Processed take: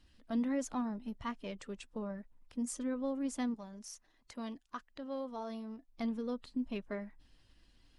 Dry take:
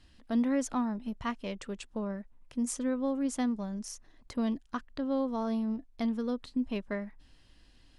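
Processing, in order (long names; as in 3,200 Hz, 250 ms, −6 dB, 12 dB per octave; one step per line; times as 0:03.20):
spectral magnitudes quantised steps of 15 dB
0:03.54–0:05.88: low-shelf EQ 350 Hz −10.5 dB
level −5 dB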